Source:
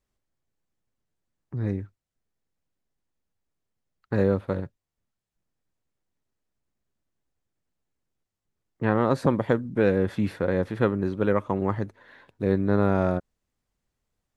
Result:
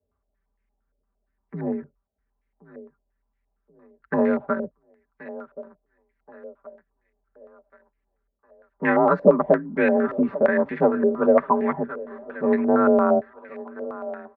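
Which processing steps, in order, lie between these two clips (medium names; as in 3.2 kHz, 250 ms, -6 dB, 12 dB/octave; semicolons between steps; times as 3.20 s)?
comb 5.3 ms, depth 97%; frequency shift +40 Hz; on a send: thinning echo 1077 ms, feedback 54%, high-pass 330 Hz, level -15 dB; on the sum: step-sequenced low-pass 8.7 Hz 540–2100 Hz; trim -2 dB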